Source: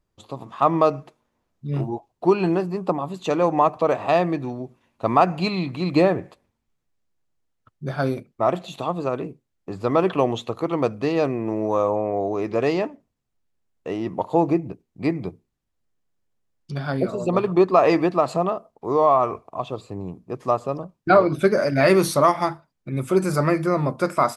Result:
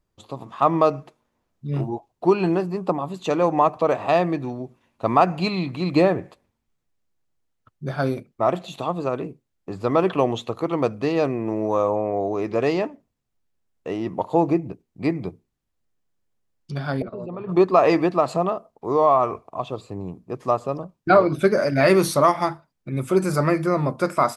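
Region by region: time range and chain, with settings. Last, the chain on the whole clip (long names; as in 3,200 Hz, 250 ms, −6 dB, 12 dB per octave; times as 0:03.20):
0:17.02–0:17.49: high-frequency loss of the air 380 metres + output level in coarse steps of 16 dB
whole clip: no processing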